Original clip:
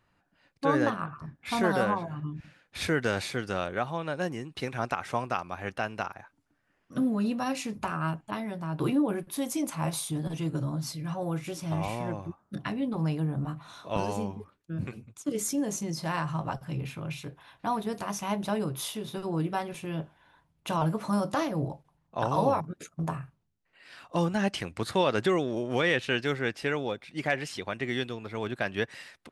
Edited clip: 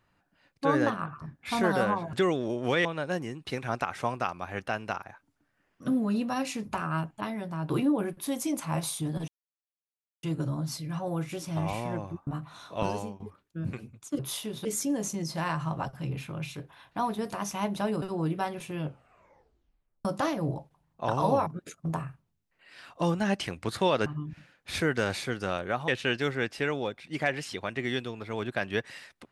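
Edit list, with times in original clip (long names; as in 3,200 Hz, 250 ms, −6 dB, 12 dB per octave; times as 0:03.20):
0:02.13–0:03.95: swap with 0:25.20–0:25.92
0:10.38: splice in silence 0.95 s
0:12.42–0:13.41: remove
0:14.04–0:14.34: fade out linear, to −17 dB
0:18.70–0:19.16: move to 0:15.33
0:19.92: tape stop 1.27 s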